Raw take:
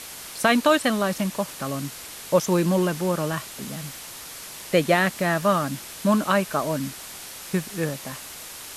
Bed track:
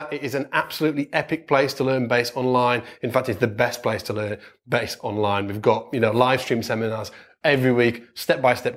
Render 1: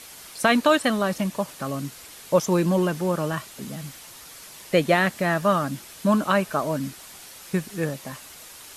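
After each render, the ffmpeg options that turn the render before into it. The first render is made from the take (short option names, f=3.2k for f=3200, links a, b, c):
-af "afftdn=nr=6:nf=-39"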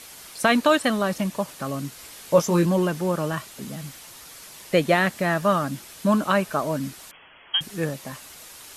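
-filter_complex "[0:a]asettb=1/sr,asplit=3[a][b][c];[a]atrim=end=1.974[d];[b]atrim=start=1.97:end=2.66,asetpts=PTS-STARTPTS,afade=t=in:d=0.004:c=qsin,afade=t=out:st=0.686:d=0.004:c=qsin,asplit=2[e][f];[f]adelay=18,volume=-5dB[g];[e][g]amix=inputs=2:normalize=0,atrim=end_sample=30429[h];[c]atrim=start=2.656[i];[d][h]acrossfade=d=0.004:c1=hsin:c2=qsin[j];[j][i]acrossfade=d=0.004:c1=qsin:c2=hsin,asettb=1/sr,asplit=3[k][l][m];[k]atrim=end=7.114[n];[l]atrim=start=7.11:end=7.61,asetpts=PTS-STARTPTS,afade=t=in:d=0.004:c=qsin,afade=t=out:st=0.496:d=0.004:c=qsin,lowpass=f=2.9k:t=q:w=0.5098,lowpass=f=2.9k:t=q:w=0.6013,lowpass=f=2.9k:t=q:w=0.9,lowpass=f=2.9k:t=q:w=2.563,afreqshift=-3400[o];[m]atrim=start=7.606[p];[n][o]acrossfade=d=0.004:c1=hsin:c2=qsin[q];[q][p]acrossfade=d=0.004:c1=qsin:c2=hsin"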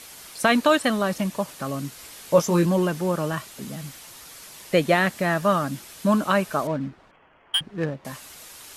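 -filter_complex "[0:a]asettb=1/sr,asplit=3[a][b][c];[a]atrim=end=6.674[d];[b]atrim=start=6.67:end=8.05,asetpts=PTS-STARTPTS,afade=t=in:d=0.004:c=qsin,afade=t=out:st=1.376:d=0.004:c=qsin,adynamicsmooth=sensitivity=3:basefreq=1.2k[e];[c]atrim=start=8.046[f];[d][e]acrossfade=d=0.004:c1=hsin:c2=qsin[g];[g][f]acrossfade=d=0.004:c1=qsin:c2=hsin"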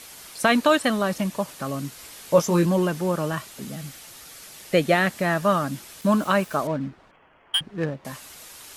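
-filter_complex "[0:a]asettb=1/sr,asplit=3[a][b][c];[a]atrim=end=3.654[d];[b]atrim=start=3.65:end=5.1,asetpts=PTS-STARTPTS,afade=t=in:d=0.004:c=qsin,afade=t=out:st=1.446:d=0.004:c=qsin,bandreject=f=1k:w=7.8[e];[c]atrim=start=5.096[f];[d][e]acrossfade=d=0.004:c1=hsin:c2=qsin[g];[g][f]acrossfade=d=0.004:c1=qsin:c2=hsin,asettb=1/sr,asplit=3[h][i][j];[h]atrim=end=6.014[k];[i]atrim=start=6.01:end=6.57,asetpts=PTS-STARTPTS,afade=t=in:d=0.004:c=qsin,afade=t=out:st=0.556:d=0.004:c=qsin,aeval=exprs='val(0)*gte(abs(val(0)),0.00944)':c=same[l];[j]atrim=start=6.566[m];[k][l]acrossfade=d=0.004:c1=hsin:c2=qsin[n];[n][m]acrossfade=d=0.004:c1=qsin:c2=hsin"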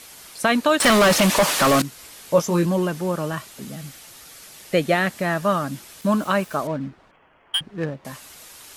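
-filter_complex "[0:a]asettb=1/sr,asplit=3[a][b][c];[a]atrim=end=0.804[d];[b]atrim=start=0.8:end=1.82,asetpts=PTS-STARTPTS,afade=t=in:d=0.004:c=qsin,afade=t=out:st=1.016:d=0.004:c=qsin,asplit=2[e][f];[f]highpass=f=720:p=1,volume=32dB,asoftclip=type=tanh:threshold=-7.5dB[g];[e][g]amix=inputs=2:normalize=0,lowpass=f=5.5k:p=1,volume=-6dB[h];[c]atrim=start=1.816[i];[d][h]acrossfade=d=0.004:c1=hsin:c2=qsin[j];[j][i]acrossfade=d=0.004:c1=qsin:c2=hsin"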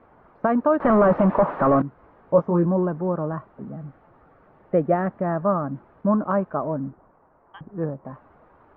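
-af "lowpass=f=1.2k:w=0.5412,lowpass=f=1.2k:w=1.3066"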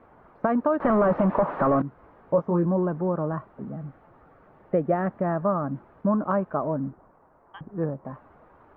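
-af "acompressor=threshold=-21dB:ratio=2"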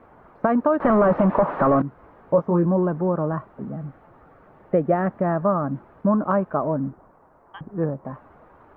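-af "volume=3.5dB"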